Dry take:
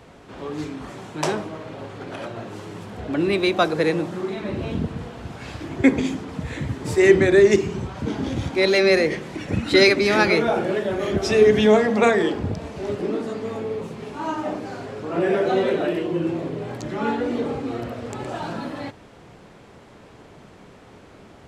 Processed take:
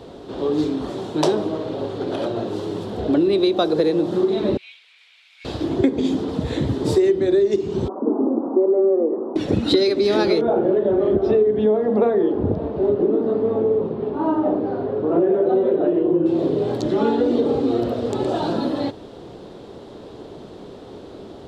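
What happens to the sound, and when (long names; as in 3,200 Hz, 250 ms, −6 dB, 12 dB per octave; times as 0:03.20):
0:04.57–0:05.45: four-pole ladder high-pass 2,200 Hz, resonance 85%
0:07.88–0:09.36: Chebyshev band-pass filter 230–1,200 Hz, order 4
0:10.41–0:16.26: low-pass filter 1,500 Hz
whole clip: drawn EQ curve 170 Hz 0 dB, 370 Hz +9 dB, 2,300 Hz −9 dB, 3,700 Hz +6 dB, 6,400 Hz −4 dB; downward compressor 12 to 1, threshold −18 dBFS; level +4 dB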